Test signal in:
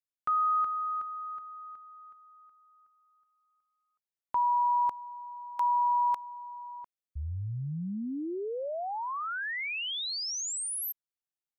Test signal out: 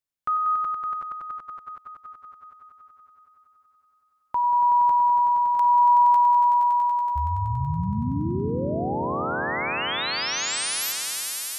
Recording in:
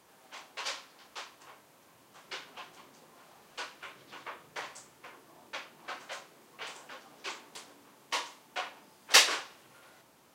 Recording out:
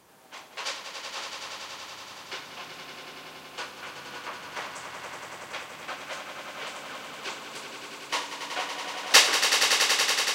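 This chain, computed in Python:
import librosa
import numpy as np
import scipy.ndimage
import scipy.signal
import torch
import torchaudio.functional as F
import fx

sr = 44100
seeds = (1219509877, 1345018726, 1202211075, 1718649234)

y = fx.low_shelf(x, sr, hz=220.0, db=4.0)
y = fx.echo_swell(y, sr, ms=94, loudest=5, wet_db=-8.0)
y = F.gain(torch.from_numpy(y), 3.5).numpy()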